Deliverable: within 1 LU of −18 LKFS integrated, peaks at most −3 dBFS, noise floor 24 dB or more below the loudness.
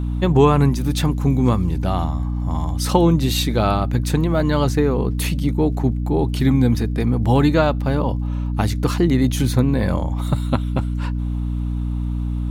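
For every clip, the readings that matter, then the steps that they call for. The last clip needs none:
crackle rate 20 per second; mains hum 60 Hz; hum harmonics up to 300 Hz; level of the hum −20 dBFS; integrated loudness −19.5 LKFS; sample peak −1.5 dBFS; target loudness −18.0 LKFS
→ click removal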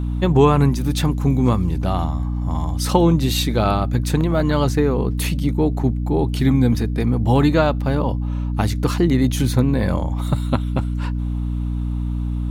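crackle rate 0.24 per second; mains hum 60 Hz; hum harmonics up to 300 Hz; level of the hum −20 dBFS
→ mains-hum notches 60/120/180/240/300 Hz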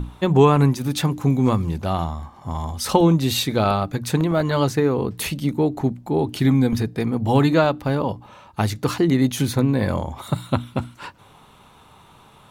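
mains hum none found; integrated loudness −21.0 LKFS; sample peak −2.5 dBFS; target loudness −18.0 LKFS
→ level +3 dB
brickwall limiter −3 dBFS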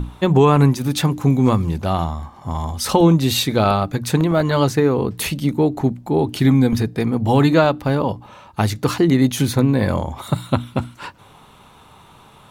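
integrated loudness −18.0 LKFS; sample peak −3.0 dBFS; background noise floor −47 dBFS

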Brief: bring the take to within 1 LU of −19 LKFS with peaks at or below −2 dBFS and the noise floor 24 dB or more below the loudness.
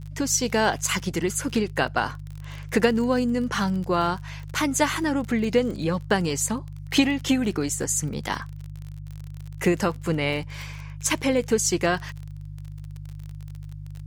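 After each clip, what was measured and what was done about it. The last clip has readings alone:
crackle rate 35 per second; mains hum 50 Hz; hum harmonics up to 150 Hz; level of the hum −35 dBFS; integrated loudness −24.5 LKFS; sample peak −6.0 dBFS; target loudness −19.0 LKFS
→ click removal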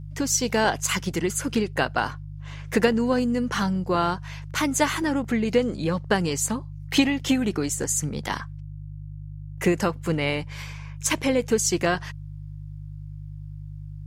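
crackle rate 0.071 per second; mains hum 50 Hz; hum harmonics up to 150 Hz; level of the hum −35 dBFS
→ hum removal 50 Hz, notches 3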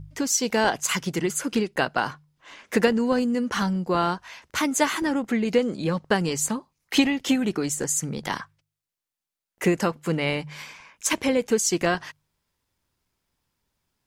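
mains hum none found; integrated loudness −24.5 LKFS; sample peak −5.5 dBFS; target loudness −19.0 LKFS
→ level +5.5 dB
brickwall limiter −2 dBFS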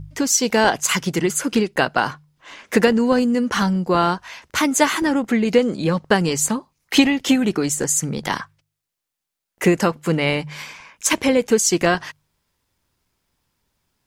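integrated loudness −19.0 LKFS; sample peak −2.0 dBFS; background noise floor −83 dBFS

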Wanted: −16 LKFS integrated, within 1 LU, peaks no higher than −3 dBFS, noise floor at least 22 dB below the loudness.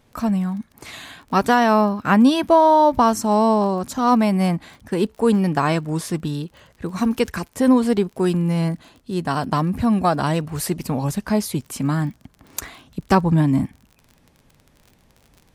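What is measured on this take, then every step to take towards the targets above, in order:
crackle rate 35 per second; integrated loudness −19.5 LKFS; sample peak −3.0 dBFS; target loudness −16.0 LKFS
→ click removal
level +3.5 dB
brickwall limiter −3 dBFS

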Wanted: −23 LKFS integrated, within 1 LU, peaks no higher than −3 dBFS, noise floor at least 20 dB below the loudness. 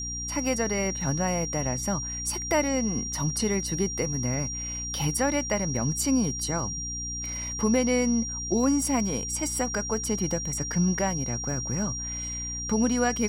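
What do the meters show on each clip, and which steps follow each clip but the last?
mains hum 60 Hz; hum harmonics up to 300 Hz; level of the hum −36 dBFS; interfering tone 5,700 Hz; level of the tone −32 dBFS; integrated loudness −27.0 LKFS; sample peak −11.5 dBFS; target loudness −23.0 LKFS
→ mains-hum notches 60/120/180/240/300 Hz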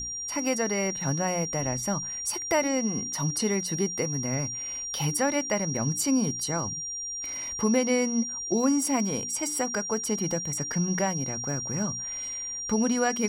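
mains hum none found; interfering tone 5,700 Hz; level of the tone −32 dBFS
→ notch filter 5,700 Hz, Q 30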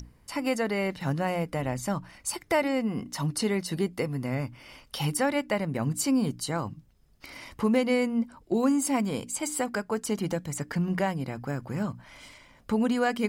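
interfering tone none found; integrated loudness −29.0 LKFS; sample peak −12.5 dBFS; target loudness −23.0 LKFS
→ level +6 dB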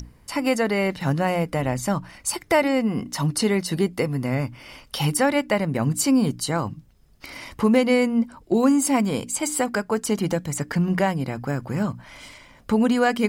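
integrated loudness −23.0 LKFS; sample peak −6.5 dBFS; background noise floor −53 dBFS

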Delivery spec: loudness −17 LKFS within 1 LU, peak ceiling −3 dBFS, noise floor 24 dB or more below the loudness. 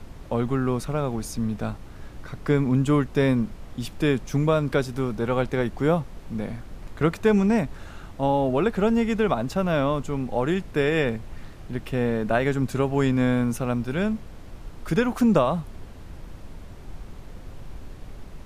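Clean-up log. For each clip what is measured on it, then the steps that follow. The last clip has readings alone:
background noise floor −42 dBFS; target noise floor −49 dBFS; integrated loudness −24.5 LKFS; sample peak −7.0 dBFS; target loudness −17.0 LKFS
→ noise reduction from a noise print 7 dB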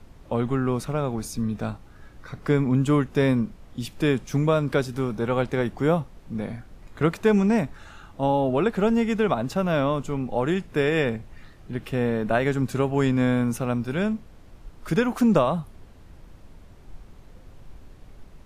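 background noise floor −48 dBFS; target noise floor −49 dBFS
→ noise reduction from a noise print 6 dB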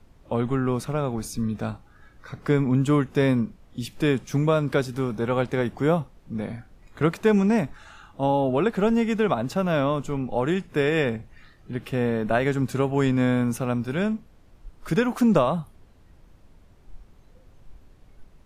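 background noise floor −54 dBFS; integrated loudness −24.5 LKFS; sample peak −7.5 dBFS; target loudness −17.0 LKFS
→ level +7.5 dB
brickwall limiter −3 dBFS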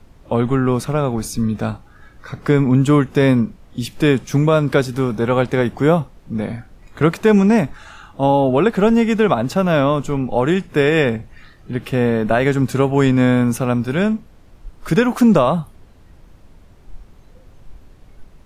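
integrated loudness −17.0 LKFS; sample peak −3.0 dBFS; background noise floor −47 dBFS

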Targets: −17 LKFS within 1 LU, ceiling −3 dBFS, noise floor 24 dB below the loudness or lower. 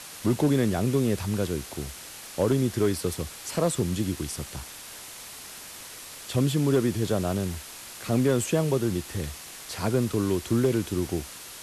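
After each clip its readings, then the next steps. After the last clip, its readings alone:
share of clipped samples 0.2%; peaks flattened at −14.5 dBFS; background noise floor −43 dBFS; target noise floor −51 dBFS; integrated loudness −27.0 LKFS; sample peak −14.5 dBFS; target loudness −17.0 LKFS
→ clipped peaks rebuilt −14.5 dBFS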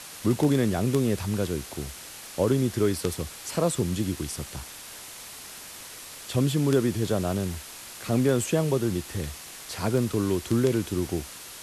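share of clipped samples 0.0%; background noise floor −43 dBFS; target noise floor −51 dBFS
→ broadband denoise 8 dB, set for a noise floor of −43 dBFS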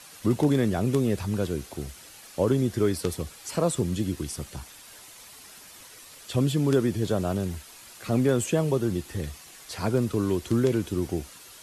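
background noise floor −48 dBFS; target noise floor −51 dBFS
→ broadband denoise 6 dB, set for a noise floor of −48 dBFS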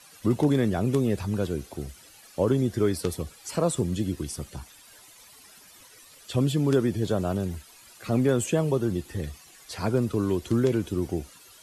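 background noise floor −52 dBFS; integrated loudness −26.5 LKFS; sample peak −7.5 dBFS; target loudness −17.0 LKFS
→ level +9.5 dB
brickwall limiter −3 dBFS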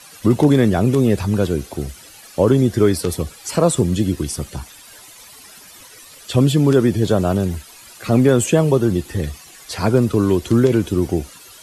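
integrated loudness −17.5 LKFS; sample peak −3.0 dBFS; background noise floor −43 dBFS

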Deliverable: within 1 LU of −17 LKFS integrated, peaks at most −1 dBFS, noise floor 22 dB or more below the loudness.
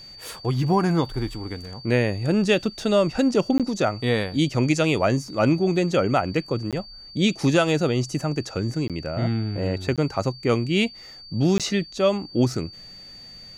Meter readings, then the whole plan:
number of dropouts 5; longest dropout 17 ms; interfering tone 4,600 Hz; level of the tone −41 dBFS; integrated loudness −23.0 LKFS; sample peak −7.5 dBFS; target loudness −17.0 LKFS
→ repair the gap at 0:03.58/0:06.71/0:08.88/0:09.96/0:11.58, 17 ms
notch filter 4,600 Hz, Q 30
level +6 dB

